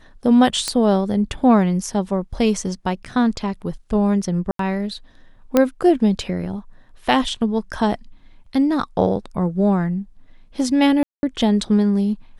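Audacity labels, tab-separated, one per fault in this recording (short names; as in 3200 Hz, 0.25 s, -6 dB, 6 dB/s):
0.680000	0.680000	pop -7 dBFS
4.510000	4.590000	gap 83 ms
5.570000	5.570000	pop -3 dBFS
11.030000	11.230000	gap 0.201 s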